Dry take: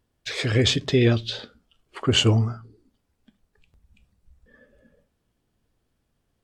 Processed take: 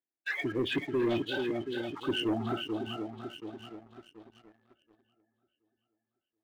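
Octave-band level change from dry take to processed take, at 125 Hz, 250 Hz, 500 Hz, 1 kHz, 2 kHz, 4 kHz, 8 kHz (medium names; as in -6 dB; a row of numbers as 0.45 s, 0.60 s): -19.5 dB, -5.5 dB, -6.5 dB, -2.5 dB, -5.0 dB, -12.5 dB, under -20 dB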